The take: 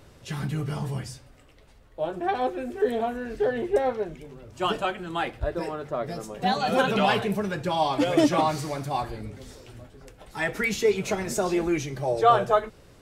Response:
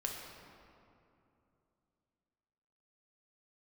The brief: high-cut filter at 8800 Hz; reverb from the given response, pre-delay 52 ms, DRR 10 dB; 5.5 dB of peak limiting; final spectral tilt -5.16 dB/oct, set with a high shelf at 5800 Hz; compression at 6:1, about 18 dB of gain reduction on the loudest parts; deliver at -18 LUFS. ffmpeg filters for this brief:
-filter_complex "[0:a]lowpass=8.8k,highshelf=f=5.8k:g=-6.5,acompressor=threshold=-35dB:ratio=6,alimiter=level_in=5.5dB:limit=-24dB:level=0:latency=1,volume=-5.5dB,asplit=2[a][b];[1:a]atrim=start_sample=2205,adelay=52[c];[b][c]afir=irnorm=-1:irlink=0,volume=-11.5dB[d];[a][d]amix=inputs=2:normalize=0,volume=21.5dB"

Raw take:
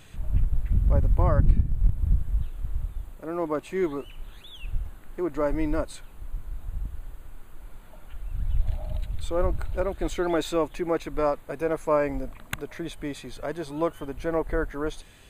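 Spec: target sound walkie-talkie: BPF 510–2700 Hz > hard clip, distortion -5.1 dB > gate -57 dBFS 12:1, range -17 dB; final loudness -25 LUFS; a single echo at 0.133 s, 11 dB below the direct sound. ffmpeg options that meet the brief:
-af "highpass=510,lowpass=2.7k,aecho=1:1:133:0.282,asoftclip=type=hard:threshold=-32dB,agate=range=-17dB:threshold=-57dB:ratio=12,volume=13dB"

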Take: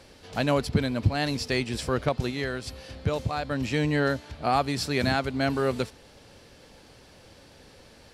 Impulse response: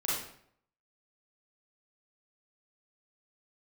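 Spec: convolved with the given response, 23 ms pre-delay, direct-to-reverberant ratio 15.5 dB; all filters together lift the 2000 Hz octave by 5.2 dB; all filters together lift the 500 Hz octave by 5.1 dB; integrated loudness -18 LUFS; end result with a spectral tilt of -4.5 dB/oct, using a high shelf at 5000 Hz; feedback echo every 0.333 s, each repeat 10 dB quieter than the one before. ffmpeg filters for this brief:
-filter_complex "[0:a]equalizer=f=500:t=o:g=6,equalizer=f=2k:t=o:g=7,highshelf=f=5k:g=-5.5,aecho=1:1:333|666|999|1332:0.316|0.101|0.0324|0.0104,asplit=2[a][b];[1:a]atrim=start_sample=2205,adelay=23[c];[b][c]afir=irnorm=-1:irlink=0,volume=-22dB[d];[a][d]amix=inputs=2:normalize=0,volume=6dB"

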